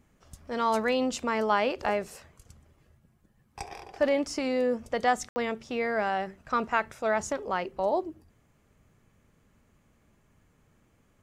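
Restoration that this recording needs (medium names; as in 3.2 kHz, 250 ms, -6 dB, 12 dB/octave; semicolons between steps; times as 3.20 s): room tone fill 5.29–5.36 s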